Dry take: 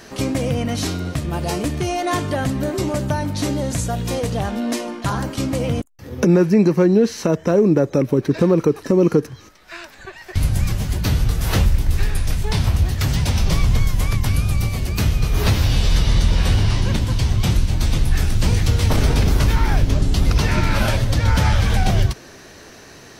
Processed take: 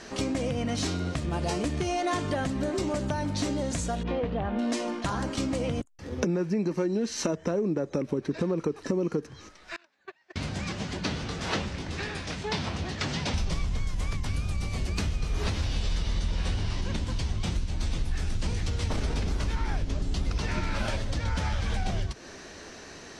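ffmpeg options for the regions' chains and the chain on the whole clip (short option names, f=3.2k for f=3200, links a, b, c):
-filter_complex "[0:a]asettb=1/sr,asplit=3[a][b][c];[a]atrim=end=4.034[d];[b]atrim=start=4.03:end=4.59,asetpts=PTS-STARTPTS,afade=t=in:d=0.004:c=qsin,afade=t=out:st=0.556:d=0.004:c=qsin,lowpass=f=3.2k:w=0.5412,lowpass=f=3.2k:w=1.3066,adynamicequalizer=threshold=0.0112:dfrequency=1600:dqfactor=0.7:tfrequency=1600:tqfactor=0.7:attack=5:release=100:ratio=0.375:range=2.5:mode=cutabove:tftype=highshelf[e];[c]atrim=start=4.586[f];[d][e]acrossfade=d=0.004:c1=hsin:c2=qsin[g];[g][f]acrossfade=d=0.004:c1=qsin:c2=hsin,asettb=1/sr,asplit=3[h][i][j];[h]atrim=end=6.714[k];[i]atrim=start=6.71:end=7.33,asetpts=PTS-STARTPTS,afade=t=in:d=0.004:c=qsin,afade=t=out:st=0.616:d=0.004:c=qsin,highshelf=f=4.1k:g=6.5,aecho=1:1:3.3:0.34,atrim=end_sample=27342[l];[j]atrim=start=7.326[m];[k][l]acrossfade=d=0.004:c1=hsin:c2=qsin[n];[n][m]acrossfade=d=0.004:c1=qsin:c2=hsin,asettb=1/sr,asplit=3[o][p][q];[o]atrim=end=9.764[r];[p]atrim=start=9.76:end=13.34,asetpts=PTS-STARTPTS,afade=t=in:d=0.004:c=qsin,afade=t=out:st=3.576:d=0.004:c=qsin,agate=range=-25dB:threshold=-33dB:ratio=16:release=100:detection=peak,highpass=170,lowpass=5.6k[s];[q]atrim=start=13.336[t];[r][s]acrossfade=d=0.004:c1=hsin:c2=qsin[u];[u][t]acrossfade=d=0.004:c1=qsin:c2=hsin,lowpass=f=8.8k:w=0.5412,lowpass=f=8.8k:w=1.3066,acompressor=threshold=-22dB:ratio=6,equalizer=f=120:w=5.7:g=-13,volume=-2.5dB"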